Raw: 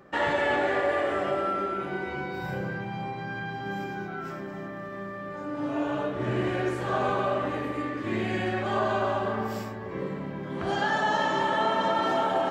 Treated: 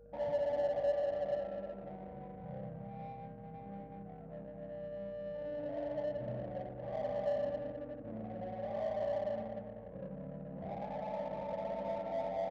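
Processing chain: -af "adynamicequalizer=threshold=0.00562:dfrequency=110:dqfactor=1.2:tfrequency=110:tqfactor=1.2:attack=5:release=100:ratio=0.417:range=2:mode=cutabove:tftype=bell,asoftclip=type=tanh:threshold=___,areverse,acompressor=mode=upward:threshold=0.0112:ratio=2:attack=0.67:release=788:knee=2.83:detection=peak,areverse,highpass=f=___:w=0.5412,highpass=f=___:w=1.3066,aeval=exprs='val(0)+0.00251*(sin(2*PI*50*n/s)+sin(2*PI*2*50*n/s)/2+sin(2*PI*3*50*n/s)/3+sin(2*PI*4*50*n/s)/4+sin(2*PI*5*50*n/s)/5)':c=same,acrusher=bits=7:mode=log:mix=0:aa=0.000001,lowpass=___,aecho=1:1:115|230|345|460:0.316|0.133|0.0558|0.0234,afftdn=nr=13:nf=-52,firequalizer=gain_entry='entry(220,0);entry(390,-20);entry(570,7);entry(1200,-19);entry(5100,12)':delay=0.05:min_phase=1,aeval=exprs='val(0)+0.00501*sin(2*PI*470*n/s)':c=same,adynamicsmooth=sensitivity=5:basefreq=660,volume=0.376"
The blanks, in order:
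0.075, 46, 46, 1100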